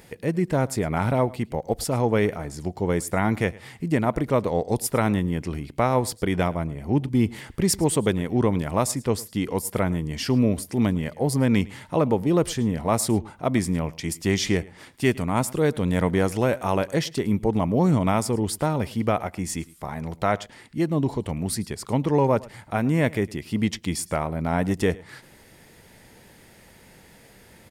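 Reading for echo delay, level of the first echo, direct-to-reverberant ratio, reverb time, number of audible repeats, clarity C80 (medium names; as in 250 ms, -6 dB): 108 ms, -22.0 dB, no reverb, no reverb, 1, no reverb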